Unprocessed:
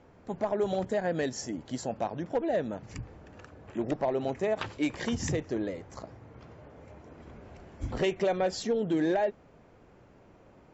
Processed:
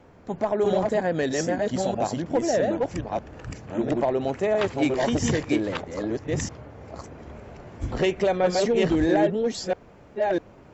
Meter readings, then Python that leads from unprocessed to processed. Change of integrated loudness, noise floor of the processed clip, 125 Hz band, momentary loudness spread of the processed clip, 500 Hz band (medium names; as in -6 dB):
+6.5 dB, -50 dBFS, +7.5 dB, 18 LU, +7.5 dB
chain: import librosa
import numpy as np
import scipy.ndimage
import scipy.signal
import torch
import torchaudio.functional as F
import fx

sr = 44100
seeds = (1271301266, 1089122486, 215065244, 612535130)

y = fx.reverse_delay(x, sr, ms=649, wet_db=-1.5)
y = fx.wow_flutter(y, sr, seeds[0], rate_hz=2.1, depth_cents=27.0)
y = y * 10.0 ** (5.0 / 20.0)